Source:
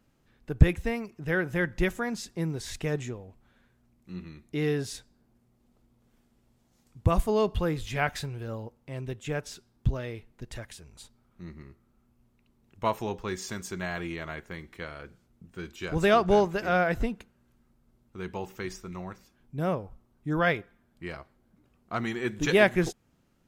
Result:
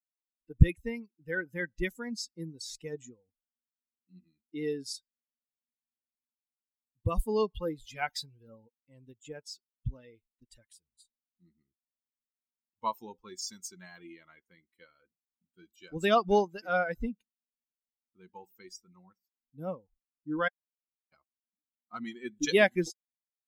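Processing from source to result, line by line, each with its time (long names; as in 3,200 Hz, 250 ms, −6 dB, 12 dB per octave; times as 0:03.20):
0:20.48–0:21.12: fill with room tone
whole clip: spectral dynamics exaggerated over time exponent 2; dynamic equaliser 5,200 Hz, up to +8 dB, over −59 dBFS, Q 1.7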